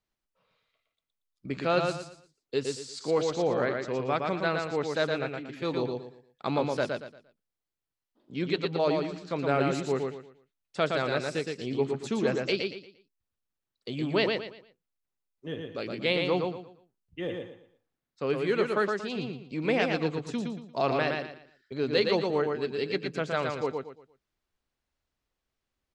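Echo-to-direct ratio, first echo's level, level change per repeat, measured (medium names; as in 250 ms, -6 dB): -3.5 dB, -4.0 dB, -10.5 dB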